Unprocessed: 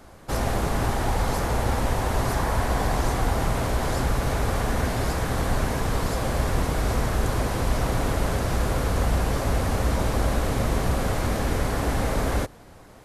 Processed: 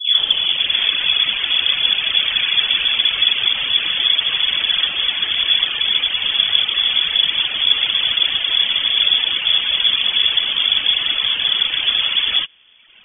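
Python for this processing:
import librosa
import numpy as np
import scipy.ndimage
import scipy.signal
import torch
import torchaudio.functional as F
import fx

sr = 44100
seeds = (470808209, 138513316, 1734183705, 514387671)

y = fx.tape_start_head(x, sr, length_s=0.83)
y = fx.freq_invert(y, sr, carrier_hz=3400)
y = fx.dereverb_blind(y, sr, rt60_s=1.2)
y = F.gain(torch.from_numpy(y), 7.5).numpy()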